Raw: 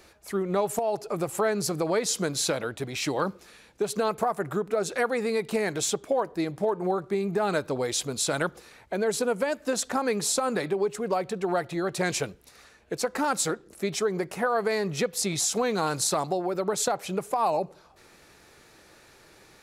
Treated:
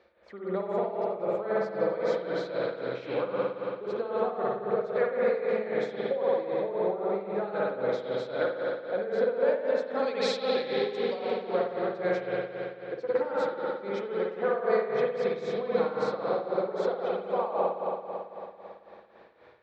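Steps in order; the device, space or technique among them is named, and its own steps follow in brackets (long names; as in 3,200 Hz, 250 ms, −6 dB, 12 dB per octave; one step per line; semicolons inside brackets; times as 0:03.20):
0:09.99–0:11.20: high shelf with overshoot 2,100 Hz +13.5 dB, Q 1.5
combo amplifier with spring reverb and tremolo (spring reverb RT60 3.3 s, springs 55 ms, chirp 40 ms, DRR −6 dB; amplitude tremolo 3.8 Hz, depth 71%; loudspeaker in its box 85–3,600 Hz, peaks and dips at 98 Hz −9 dB, 160 Hz −8 dB, 300 Hz −4 dB, 520 Hz +10 dB, 2,700 Hz −6 dB)
level −8 dB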